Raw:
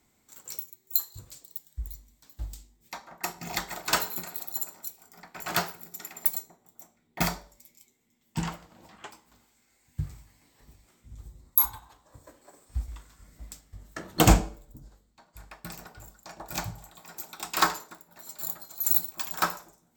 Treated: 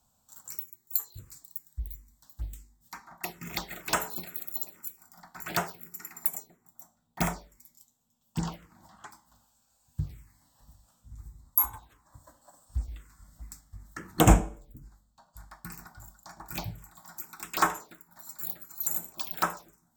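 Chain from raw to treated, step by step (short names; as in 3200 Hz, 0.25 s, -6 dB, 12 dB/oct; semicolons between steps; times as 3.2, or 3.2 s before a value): envelope phaser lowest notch 350 Hz, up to 4500 Hz, full sweep at -24 dBFS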